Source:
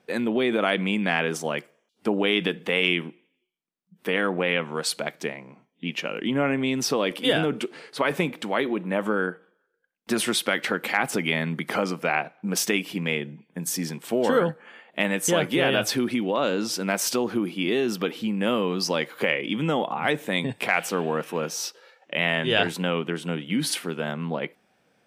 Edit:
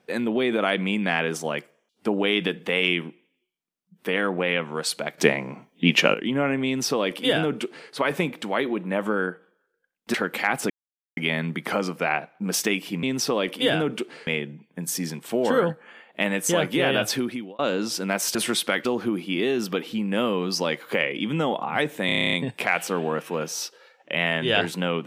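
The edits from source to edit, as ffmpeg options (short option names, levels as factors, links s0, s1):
-filter_complex "[0:a]asplit=19[s0][s1][s2][s3][s4][s5][s6][s7][s8][s9][s10][s11][s12][s13][s14][s15][s16][s17][s18];[s0]atrim=end=5.182[s19];[s1]atrim=start=5.178:end=6.142,asetpts=PTS-STARTPTS,volume=3.76[s20];[s2]atrim=start=6.138:end=10.142[s21];[s3]atrim=start=10.638:end=11.2,asetpts=PTS-STARTPTS,afade=t=out:st=0.558:d=0.004:c=hsin,apad=pad_dur=0.47[s22];[s4]atrim=start=11.2:end=13.062,asetpts=PTS-STARTPTS,afade=t=in:d=0.004:c=hsin[s23];[s5]atrim=start=6.658:end=7.902[s24];[s6]atrim=start=13.058:end=16.38,asetpts=PTS-STARTPTS,afade=t=out:st=2.872:d=0.45[s25];[s7]atrim=start=16.38:end=17.142,asetpts=PTS-STARTPTS,afade=t=in:d=0.004:c=hsin[s26];[s8]atrim=start=10.138:end=10.642[s27];[s9]atrim=start=17.138:end=20.382[s28];[s10]atrim=start=20.348:end=20.382[s29];[s11]atrim=start=20.348:end=20.382[s30];[s12]atrim=start=20.348:end=20.382[s31];[s13]atrim=start=20.348:end=20.382[s32];[s14]atrim=start=20.348:end=20.382[s33];[s15]atrim=start=20.348:end=20.382[s34];[s16]atrim=start=20.348:end=20.382[s35];[s17]atrim=start=20.348:end=20.382[s36];[s18]atrim=start=20.348[s37];[s19][s20]acrossfade=d=0.004:c1=hsin:c2=hsin[s38];[s38][s21]acrossfade=d=0.004:c1=hsin:c2=hsin[s39];[s22][s23]concat=n=2:v=0:a=1[s40];[s39][s40]acrossfade=d=0.004:c1=hsin:c2=hsin[s41];[s41][s24]acrossfade=d=0.004:c1=hsin:c2=hsin[s42];[s25][s26]concat=n=2:v=0:a=1[s43];[s42][s43]acrossfade=d=0.004:c1=hsin:c2=hsin[s44];[s44][s27]acrossfade=d=0.004:c1=hsin:c2=hsin[s45];[s45][s28]acrossfade=d=0.004:c1=hsin:c2=hsin[s46];[s46][s29]acrossfade=d=0.004:c1=hsin:c2=hsin[s47];[s47][s30]acrossfade=d=0.004:c1=hsin:c2=hsin[s48];[s48][s31]acrossfade=d=0.004:c1=hsin:c2=hsin[s49];[s49][s32]acrossfade=d=0.004:c1=hsin:c2=hsin[s50];[s50][s33]acrossfade=d=0.004:c1=hsin:c2=hsin[s51];[s51][s34]acrossfade=d=0.004:c1=hsin:c2=hsin[s52];[s52][s35]acrossfade=d=0.004:c1=hsin:c2=hsin[s53];[s53][s36]acrossfade=d=0.004:c1=hsin:c2=hsin[s54];[s54][s37]acrossfade=d=0.004:c1=hsin:c2=hsin"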